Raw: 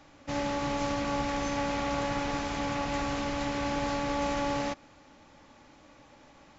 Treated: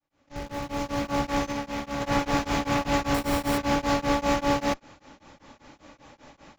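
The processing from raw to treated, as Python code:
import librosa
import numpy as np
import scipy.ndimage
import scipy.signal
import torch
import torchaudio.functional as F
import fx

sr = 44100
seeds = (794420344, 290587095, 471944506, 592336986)

p1 = fx.fade_in_head(x, sr, length_s=1.7)
p2 = fx.schmitt(p1, sr, flips_db=-37.0)
p3 = p1 + (p2 * 10.0 ** (-11.0 / 20.0))
p4 = fx.comb_fb(p3, sr, f0_hz=72.0, decay_s=0.65, harmonics='all', damping=0.0, mix_pct=70, at=(1.51, 2.0), fade=0.02)
p5 = fx.sample_hold(p4, sr, seeds[0], rate_hz=6400.0, jitter_pct=0, at=(3.14, 3.58))
p6 = p5 * np.abs(np.cos(np.pi * 5.1 * np.arange(len(p5)) / sr))
y = p6 * 10.0 ** (7.5 / 20.0)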